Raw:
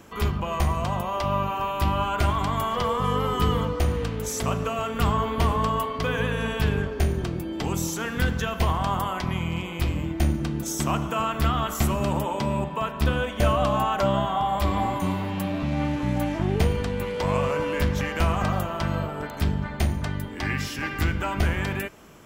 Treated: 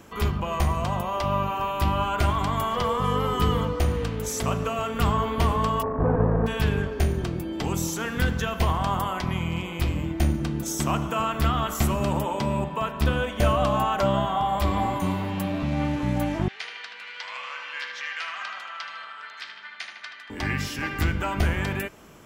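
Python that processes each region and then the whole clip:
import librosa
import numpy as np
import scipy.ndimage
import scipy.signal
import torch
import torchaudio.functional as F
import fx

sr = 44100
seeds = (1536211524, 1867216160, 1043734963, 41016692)

y = fx.halfwave_hold(x, sr, at=(5.81, 6.46), fade=0.02)
y = fx.lowpass(y, sr, hz=1100.0, slope=24, at=(5.81, 6.46), fade=0.02)
y = fx.dmg_buzz(y, sr, base_hz=50.0, harmonics=38, level_db=-39.0, tilt_db=-4, odd_only=False, at=(5.81, 6.46), fade=0.02)
y = fx.chain(y, sr, fx.cheby1_bandpass(low_hz=1600.0, high_hz=4900.0, order=2),
    fx.echo_filtered(ms=77, feedback_pct=79, hz=4100.0, wet_db=-6), at=(16.48, 20.3))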